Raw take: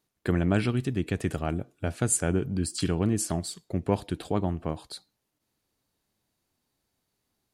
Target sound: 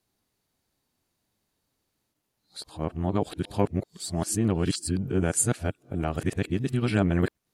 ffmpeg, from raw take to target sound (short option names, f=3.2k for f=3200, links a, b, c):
-af "areverse,volume=1dB"